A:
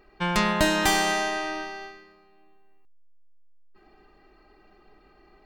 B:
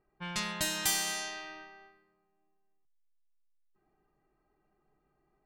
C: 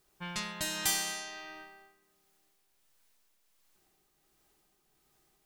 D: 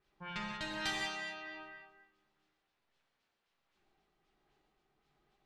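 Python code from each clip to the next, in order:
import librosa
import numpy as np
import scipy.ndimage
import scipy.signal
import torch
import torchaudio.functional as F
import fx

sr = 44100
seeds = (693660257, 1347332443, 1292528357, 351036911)

y1 = scipy.signal.lfilter([1.0, -0.9], [1.0], x)
y1 = fx.env_lowpass(y1, sr, base_hz=1000.0, full_db=-30.5)
y1 = fx.peak_eq(y1, sr, hz=140.0, db=13.0, octaves=0.67)
y2 = fx.quant_dither(y1, sr, seeds[0], bits=12, dither='triangular')
y2 = fx.tremolo_shape(y2, sr, shape='triangle', hz=1.4, depth_pct=40)
y3 = fx.filter_lfo_lowpass(y2, sr, shape='sine', hz=3.8, low_hz=840.0, high_hz=3800.0, q=1.3)
y3 = fx.rev_gated(y3, sr, seeds[1], gate_ms=210, shape='flat', drr_db=-1.5)
y3 = F.gain(torch.from_numpy(y3), -5.5).numpy()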